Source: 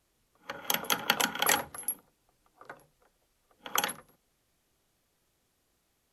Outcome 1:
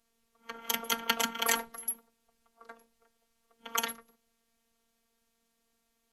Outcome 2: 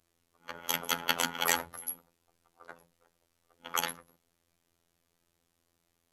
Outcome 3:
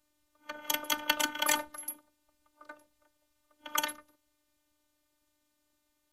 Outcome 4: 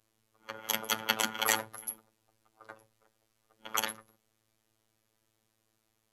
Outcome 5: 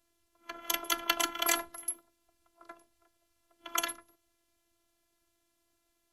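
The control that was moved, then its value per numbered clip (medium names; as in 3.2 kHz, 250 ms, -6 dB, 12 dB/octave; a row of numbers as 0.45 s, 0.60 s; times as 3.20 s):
robot voice, frequency: 230 Hz, 85 Hz, 300 Hz, 110 Hz, 340 Hz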